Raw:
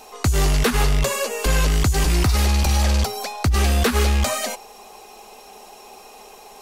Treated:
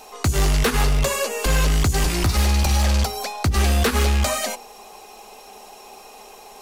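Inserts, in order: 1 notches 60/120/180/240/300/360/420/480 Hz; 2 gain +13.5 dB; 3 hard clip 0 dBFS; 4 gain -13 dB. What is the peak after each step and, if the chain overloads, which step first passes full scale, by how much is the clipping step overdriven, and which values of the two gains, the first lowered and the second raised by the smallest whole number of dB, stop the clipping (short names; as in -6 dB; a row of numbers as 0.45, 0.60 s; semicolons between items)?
-7.5, +6.0, 0.0, -13.0 dBFS; step 2, 6.0 dB; step 2 +7.5 dB, step 4 -7 dB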